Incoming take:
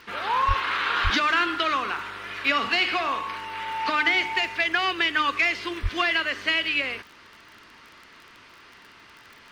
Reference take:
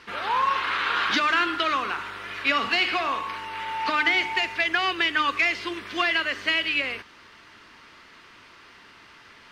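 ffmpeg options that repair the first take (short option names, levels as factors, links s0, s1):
-filter_complex "[0:a]adeclick=t=4,asplit=3[s0][s1][s2];[s0]afade=t=out:st=0.47:d=0.02[s3];[s1]highpass=f=140:w=0.5412,highpass=f=140:w=1.3066,afade=t=in:st=0.47:d=0.02,afade=t=out:st=0.59:d=0.02[s4];[s2]afade=t=in:st=0.59:d=0.02[s5];[s3][s4][s5]amix=inputs=3:normalize=0,asplit=3[s6][s7][s8];[s6]afade=t=out:st=1.03:d=0.02[s9];[s7]highpass=f=140:w=0.5412,highpass=f=140:w=1.3066,afade=t=in:st=1.03:d=0.02,afade=t=out:st=1.15:d=0.02[s10];[s8]afade=t=in:st=1.15:d=0.02[s11];[s9][s10][s11]amix=inputs=3:normalize=0,asplit=3[s12][s13][s14];[s12]afade=t=out:st=5.82:d=0.02[s15];[s13]highpass=f=140:w=0.5412,highpass=f=140:w=1.3066,afade=t=in:st=5.82:d=0.02,afade=t=out:st=5.94:d=0.02[s16];[s14]afade=t=in:st=5.94:d=0.02[s17];[s15][s16][s17]amix=inputs=3:normalize=0"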